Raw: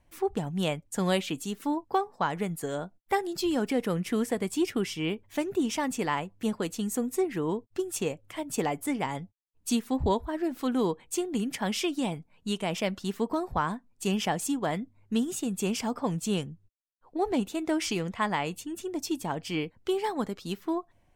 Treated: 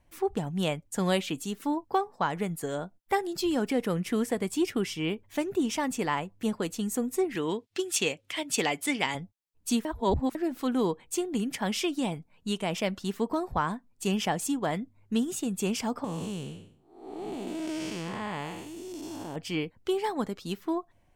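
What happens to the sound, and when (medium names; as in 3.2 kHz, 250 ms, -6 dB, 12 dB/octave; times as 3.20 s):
7.35–9.15 s: frequency weighting D
9.85–10.35 s: reverse
16.04–19.36 s: spectral blur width 337 ms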